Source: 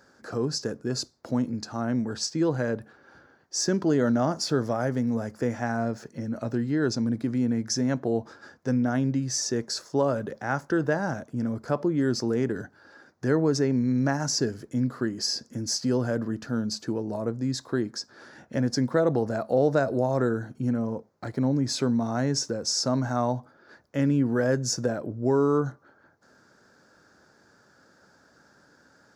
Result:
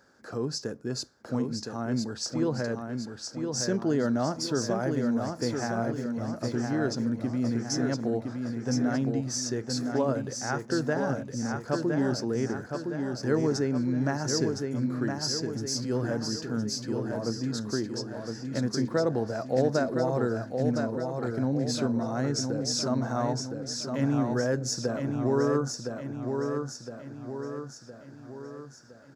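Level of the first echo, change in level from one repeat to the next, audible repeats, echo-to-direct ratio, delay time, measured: -5.0 dB, -6.0 dB, 6, -3.5 dB, 1013 ms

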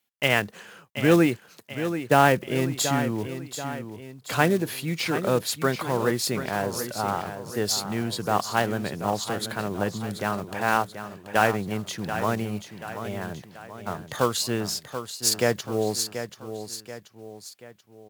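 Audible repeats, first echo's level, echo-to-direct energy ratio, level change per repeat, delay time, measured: 3, -10.0 dB, -9.0 dB, -6.5 dB, 733 ms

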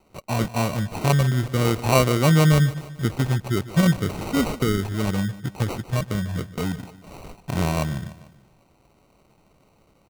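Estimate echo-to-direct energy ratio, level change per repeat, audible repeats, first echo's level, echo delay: -15.5 dB, -5.5 dB, 3, -17.0 dB, 148 ms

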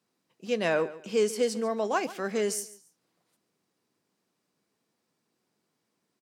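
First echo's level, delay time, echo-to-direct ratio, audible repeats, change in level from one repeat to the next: -17.0 dB, 141 ms, -17.0 dB, 2, -12.0 dB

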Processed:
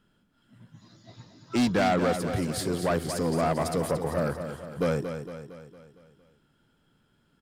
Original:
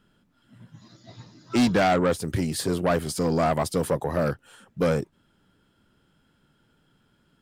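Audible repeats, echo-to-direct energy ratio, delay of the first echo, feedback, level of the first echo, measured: 5, -7.0 dB, 229 ms, 52%, -8.5 dB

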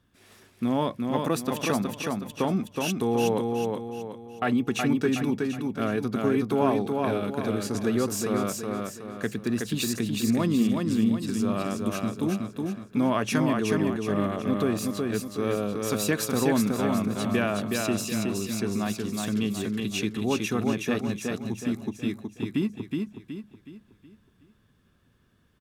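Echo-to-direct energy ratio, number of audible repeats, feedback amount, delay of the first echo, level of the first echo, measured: -2.5 dB, 5, 41%, 370 ms, -3.5 dB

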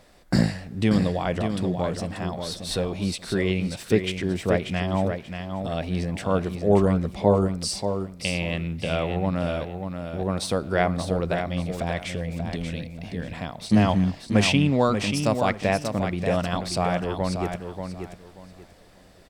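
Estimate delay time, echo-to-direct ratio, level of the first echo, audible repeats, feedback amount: 585 ms, -6.5 dB, -7.0 dB, 3, 24%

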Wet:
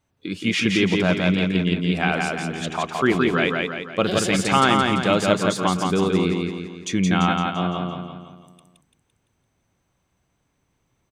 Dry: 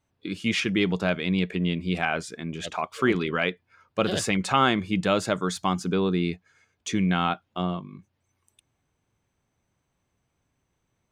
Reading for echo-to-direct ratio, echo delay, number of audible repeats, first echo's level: -2.0 dB, 170 ms, 6, -3.0 dB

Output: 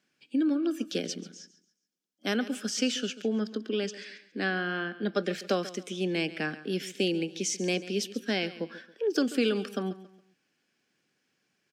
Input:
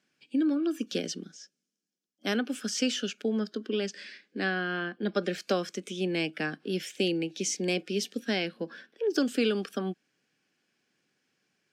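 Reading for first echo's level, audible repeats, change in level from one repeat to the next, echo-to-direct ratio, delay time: -16.0 dB, 3, -9.5 dB, -15.5 dB, 138 ms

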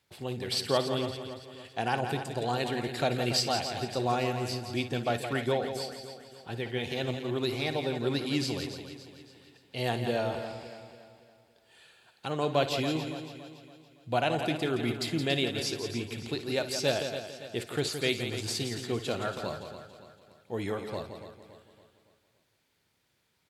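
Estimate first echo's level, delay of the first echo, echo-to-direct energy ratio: -14.0 dB, 58 ms, -5.0 dB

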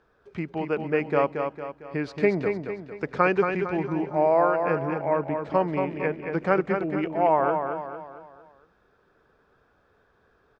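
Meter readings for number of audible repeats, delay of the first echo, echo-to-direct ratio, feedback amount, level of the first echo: 5, 227 ms, -5.0 dB, 45%, -6.0 dB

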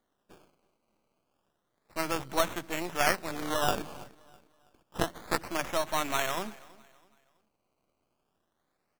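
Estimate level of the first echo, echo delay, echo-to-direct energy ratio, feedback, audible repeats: -22.5 dB, 327 ms, -22.0 dB, 37%, 2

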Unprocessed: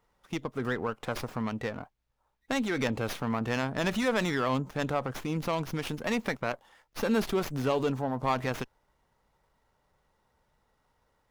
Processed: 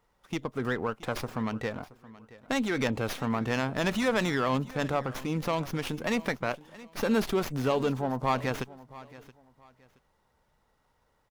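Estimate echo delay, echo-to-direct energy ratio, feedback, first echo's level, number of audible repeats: 674 ms, -18.5 dB, 27%, -19.0 dB, 2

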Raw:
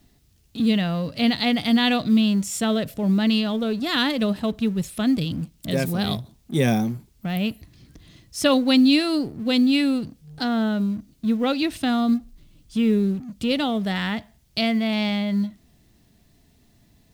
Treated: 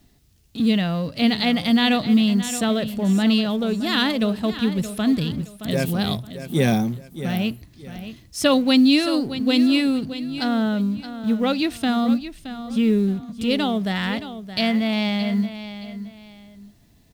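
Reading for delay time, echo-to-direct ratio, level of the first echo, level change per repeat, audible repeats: 621 ms, -11.5 dB, -12.0 dB, -11.0 dB, 2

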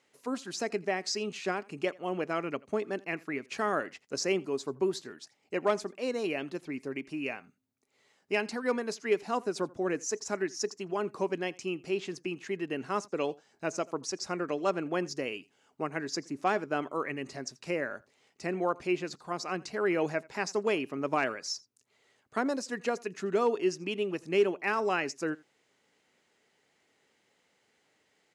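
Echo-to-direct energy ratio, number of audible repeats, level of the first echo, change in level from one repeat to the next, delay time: -24.0 dB, 1, -24.0 dB, no regular repeats, 84 ms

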